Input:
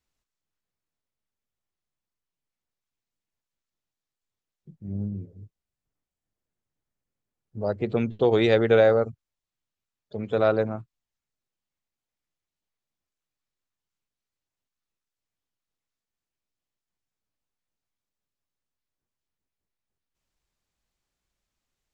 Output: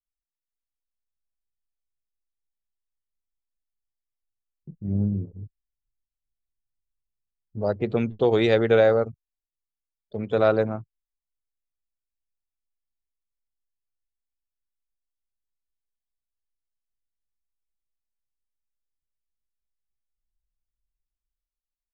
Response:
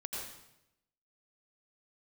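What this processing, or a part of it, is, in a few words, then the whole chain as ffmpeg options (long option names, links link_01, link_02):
voice memo with heavy noise removal: -af "anlmdn=0.01,dynaudnorm=framelen=120:gausssize=13:maxgain=12.5dB,volume=-6dB"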